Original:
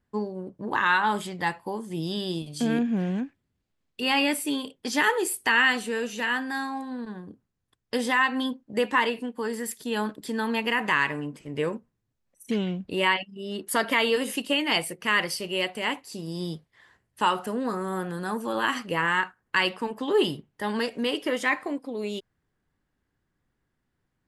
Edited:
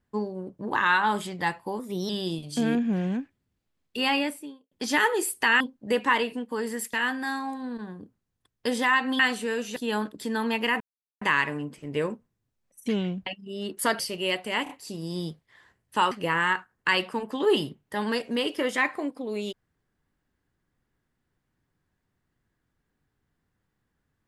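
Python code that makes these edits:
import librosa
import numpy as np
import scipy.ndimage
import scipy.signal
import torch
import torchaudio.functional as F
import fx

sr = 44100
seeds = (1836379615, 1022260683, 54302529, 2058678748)

y = fx.studio_fade_out(x, sr, start_s=4.04, length_s=0.71)
y = fx.edit(y, sr, fx.speed_span(start_s=1.79, length_s=0.34, speed=1.12),
    fx.swap(start_s=5.64, length_s=0.57, other_s=8.47, other_length_s=1.33),
    fx.insert_silence(at_s=10.84, length_s=0.41),
    fx.cut(start_s=12.89, length_s=0.27),
    fx.cut(start_s=13.89, length_s=1.41),
    fx.stutter(start_s=15.94, slice_s=0.03, count=3),
    fx.cut(start_s=17.36, length_s=1.43), tone=tone)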